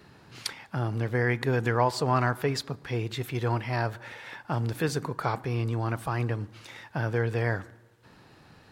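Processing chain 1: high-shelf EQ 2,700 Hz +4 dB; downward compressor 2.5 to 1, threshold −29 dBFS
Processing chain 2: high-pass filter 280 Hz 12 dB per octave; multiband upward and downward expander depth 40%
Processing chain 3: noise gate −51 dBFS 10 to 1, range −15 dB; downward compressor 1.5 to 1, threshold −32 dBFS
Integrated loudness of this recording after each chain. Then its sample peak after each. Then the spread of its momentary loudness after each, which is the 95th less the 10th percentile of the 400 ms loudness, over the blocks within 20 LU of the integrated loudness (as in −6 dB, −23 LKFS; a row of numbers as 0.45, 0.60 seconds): −33.5, −31.0, −33.0 LKFS; −14.0, −8.5, −14.5 dBFS; 8, 15, 9 LU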